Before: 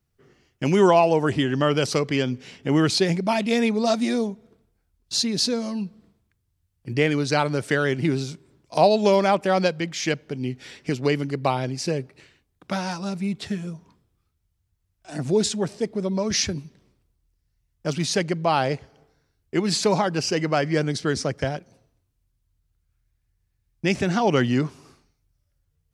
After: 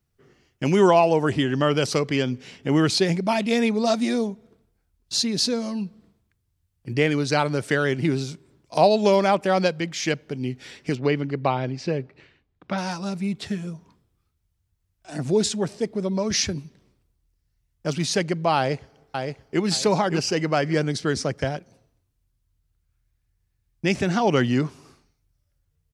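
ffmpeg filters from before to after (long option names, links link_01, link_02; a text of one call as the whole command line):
ffmpeg -i in.wav -filter_complex "[0:a]asettb=1/sr,asplit=3[link_01][link_02][link_03];[link_01]atrim=end=10.954[link_04];[link_02]atrim=start=10.95:end=12.78,asetpts=PTS-STARTPTS,afade=type=in:duration=0.004:curve=qsin,afade=type=out:start_time=1.826:duration=0.004:curve=qsin,lowpass=3400[link_05];[link_03]atrim=start=12.776[link_06];[link_04][link_05]acrossfade=duration=0.004:curve1=hsin:curve2=qsin[link_07];[link_07][link_06]acrossfade=duration=0.004:curve1=qsin:curve2=hsin,asplit=2[link_08][link_09];[link_09]afade=type=in:start_time=18.57:duration=0.01,afade=type=out:start_time=19.62:duration=0.01,aecho=0:1:570|1140|1710:0.562341|0.140585|0.0351463[link_10];[link_08][link_10]amix=inputs=2:normalize=0" out.wav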